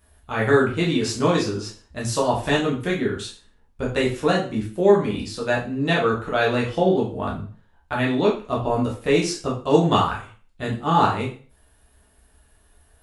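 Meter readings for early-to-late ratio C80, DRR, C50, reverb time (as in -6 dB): 12.5 dB, -4.5 dB, 7.5 dB, 0.40 s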